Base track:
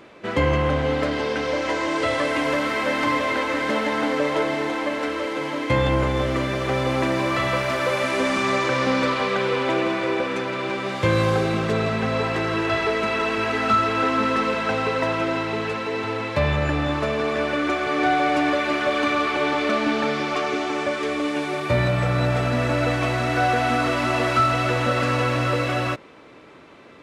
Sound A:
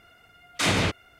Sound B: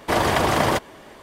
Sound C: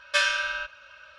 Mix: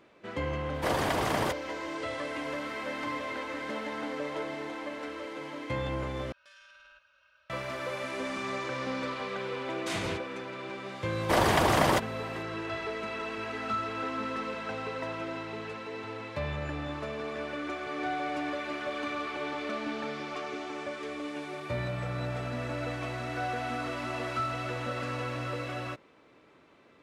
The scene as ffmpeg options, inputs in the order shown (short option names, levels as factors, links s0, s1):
-filter_complex "[2:a]asplit=2[s0][s1];[0:a]volume=0.224[s2];[3:a]acompressor=threshold=0.0178:ratio=10:attack=0.17:release=23:knee=1:detection=rms[s3];[s2]asplit=2[s4][s5];[s4]atrim=end=6.324[s6];[s3]atrim=end=1.18,asetpts=PTS-STARTPTS,volume=0.158[s7];[s5]atrim=start=7.496[s8];[s0]atrim=end=1.22,asetpts=PTS-STARTPTS,volume=0.335,afade=t=in:d=0.004:c=hsin,afade=t=out:st=1.216:d=0.004:c=hsin,adelay=740[s9];[1:a]atrim=end=1.19,asetpts=PTS-STARTPTS,volume=0.251,afade=t=in:d=0.004:c=hsin,afade=t=out:st=1.186:d=0.004:c=hsin,adelay=9270[s10];[s1]atrim=end=1.22,asetpts=PTS-STARTPTS,volume=0.596,afade=t=in:d=0.004:c=hsin,afade=t=out:st=1.216:d=0.004:c=hsin,adelay=11210[s11];[s6][s7]acrossfade=d=0.004:c1=hsin:c2=hsin[s12];[s12][s8]acrossfade=d=0.004:c1=hsin:c2=hsin[s13];[s13][s9][s10][s11]amix=inputs=4:normalize=0"